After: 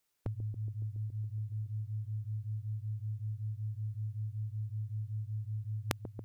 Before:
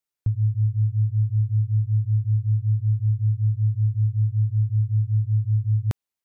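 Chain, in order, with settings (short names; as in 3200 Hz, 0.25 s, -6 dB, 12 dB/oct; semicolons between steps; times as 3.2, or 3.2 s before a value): on a send: dark delay 0.14 s, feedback 77%, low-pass 430 Hz, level -11.5 dB; on the sum: spectral compressor 2:1; gain +2 dB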